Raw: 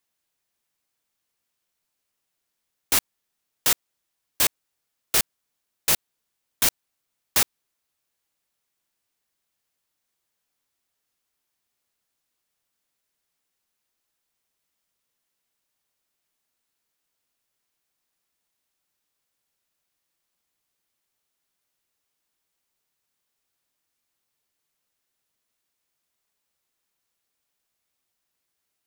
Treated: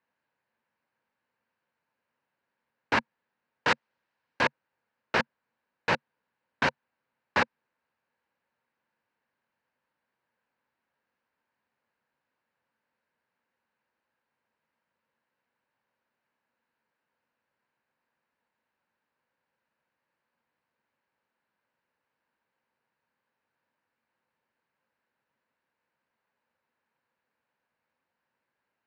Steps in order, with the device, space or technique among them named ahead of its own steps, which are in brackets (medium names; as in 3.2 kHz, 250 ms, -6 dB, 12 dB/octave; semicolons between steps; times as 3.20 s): guitar cabinet (cabinet simulation 76–3500 Hz, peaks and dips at 140 Hz +4 dB, 230 Hz +8 dB, 520 Hz +8 dB, 930 Hz +9 dB, 1.6 kHz +8 dB, 3.4 kHz -9 dB); 3.68–4.41 s: treble shelf 2.6 kHz +6 dB